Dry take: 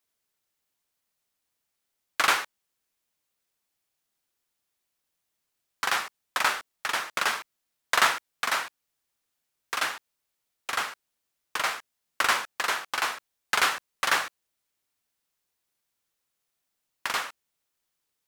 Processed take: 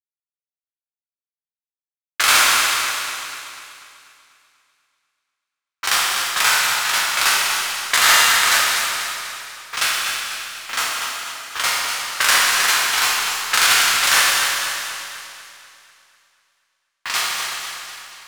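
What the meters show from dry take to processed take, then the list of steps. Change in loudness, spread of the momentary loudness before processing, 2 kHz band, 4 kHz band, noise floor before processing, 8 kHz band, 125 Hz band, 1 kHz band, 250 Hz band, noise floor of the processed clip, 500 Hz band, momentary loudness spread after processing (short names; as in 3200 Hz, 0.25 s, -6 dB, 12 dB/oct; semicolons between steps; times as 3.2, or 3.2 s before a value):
+10.5 dB, 13 LU, +10.5 dB, +14.5 dB, -81 dBFS, +17.5 dB, n/a, +8.0 dB, +5.5 dB, under -85 dBFS, +5.5 dB, 17 LU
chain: spectral trails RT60 0.52 s; HPF 570 Hz 6 dB/oct; low-pass opened by the level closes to 980 Hz, open at -23.5 dBFS; high shelf 2700 Hz +12 dB; requantised 6-bit, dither none; power-law curve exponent 1.4; flange 0.62 Hz, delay 6.4 ms, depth 1.6 ms, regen -75%; Schroeder reverb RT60 2.3 s, combs from 25 ms, DRR -2 dB; maximiser +10.5 dB; warbling echo 0.245 s, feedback 50%, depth 75 cents, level -8 dB; gain -1 dB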